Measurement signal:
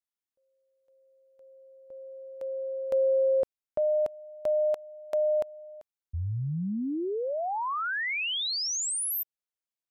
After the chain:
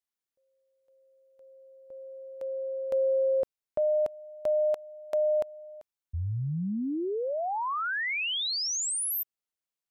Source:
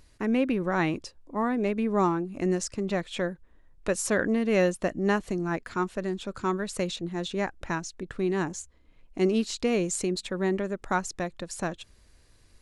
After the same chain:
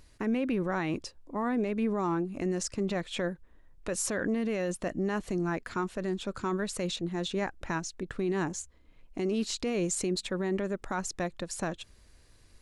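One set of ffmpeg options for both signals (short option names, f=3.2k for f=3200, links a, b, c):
-af "alimiter=limit=-22dB:level=0:latency=1:release=17"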